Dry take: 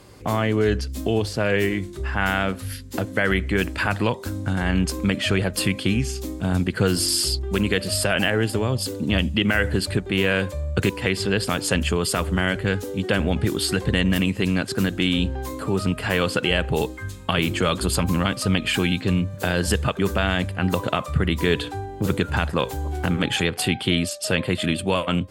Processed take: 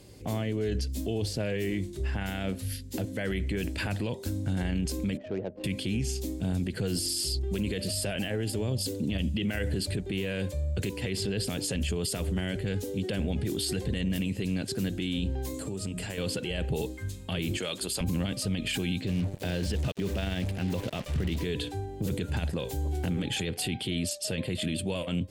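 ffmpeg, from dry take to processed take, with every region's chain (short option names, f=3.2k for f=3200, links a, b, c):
-filter_complex "[0:a]asettb=1/sr,asplit=3[a][b][c];[a]atrim=end=5.174[d];[b]atrim=start=5.17:end=5.64,asetpts=PTS-STARTPTS,afade=t=in:d=0.004:c=qsin,afade=t=out:st=0.466:d=0.004:c=qsin,bandpass=f=690:t=q:w=0.92,adynamicsmooth=sensitivity=1:basefreq=650[e];[c]atrim=start=5.636[f];[d][e]acrossfade=d=0.004:c1=hsin:c2=qsin[g];[g][f]acrossfade=d=0.004:c1=qsin:c2=hsin,asettb=1/sr,asplit=3[h][i][j];[h]atrim=end=15.544[k];[i]atrim=start=15.54:end=16.18,asetpts=PTS-STARTPTS,afade=t=in:d=0.004:c=qsin,afade=t=out:st=0.636:d=0.004:c=qsin,bandreject=f=60:t=h:w=6,bandreject=f=120:t=h:w=6,bandreject=f=180:t=h:w=6,bandreject=f=240:t=h:w=6,bandreject=f=300:t=h:w=6,bandreject=f=360:t=h:w=6,bandreject=f=420:t=h:w=6,bandreject=f=480:t=h:w=6,acompressor=threshold=-27dB:ratio=6:attack=3.2:release=140:knee=1:detection=peak,equalizer=f=7.6k:w=1.9:g=9.5[l];[j]atrim=start=16.176[m];[k][l]acrossfade=d=0.004:c1=hsin:c2=qsin[n];[n][m]acrossfade=d=0.004:c1=qsin:c2=hsin,asettb=1/sr,asplit=3[o][p][q];[o]atrim=end=17.574[r];[p]atrim=start=17.57:end=18.01,asetpts=PTS-STARTPTS,afade=t=in:d=0.004:c=qsin,afade=t=out:st=0.436:d=0.004:c=qsin,highpass=f=260:p=1,lowshelf=f=480:g=-8.5[s];[q]atrim=start=18.006[t];[r][s]acrossfade=d=0.004:c1=hsin:c2=qsin[u];[u][t]acrossfade=d=0.004:c1=qsin:c2=hsin,asettb=1/sr,asplit=3[v][w][x];[v]atrim=end=19.074[y];[w]atrim=start=19.07:end=21.45,asetpts=PTS-STARTPTS,afade=t=in:d=0.004:c=qsin,afade=t=out:st=2.376:d=0.004:c=qsin,acrusher=bits=4:mix=0:aa=0.5,acrossover=split=4900[z][aa];[aa]acompressor=threshold=-44dB:ratio=4:attack=1:release=60[ab];[z][ab]amix=inputs=2:normalize=0[ac];[x]atrim=start=21.446[ad];[y][ac]acrossfade=d=0.004:c1=hsin:c2=qsin[ae];[ae][ad]acrossfade=d=0.004:c1=qsin:c2=hsin,equalizer=f=1.2k:w=1.2:g=-14,alimiter=limit=-19.5dB:level=0:latency=1:release=13,volume=-2.5dB"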